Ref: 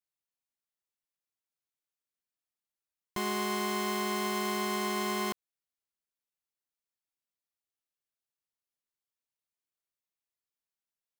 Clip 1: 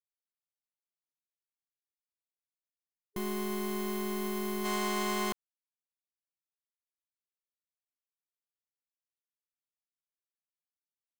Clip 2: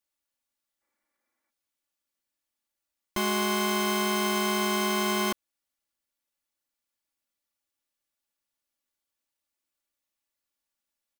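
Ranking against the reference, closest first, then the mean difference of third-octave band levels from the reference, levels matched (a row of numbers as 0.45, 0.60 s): 2, 1; 2.0, 3.5 dB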